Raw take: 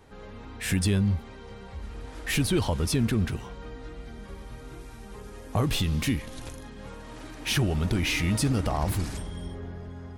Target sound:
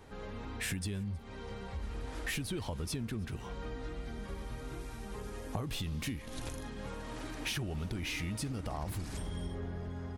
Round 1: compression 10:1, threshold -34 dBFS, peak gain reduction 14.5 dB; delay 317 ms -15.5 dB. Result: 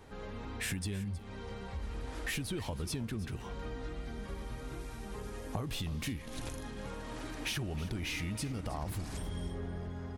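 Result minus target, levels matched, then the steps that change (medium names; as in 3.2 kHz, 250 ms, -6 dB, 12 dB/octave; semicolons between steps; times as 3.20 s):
echo-to-direct +10 dB
change: delay 317 ms -25.5 dB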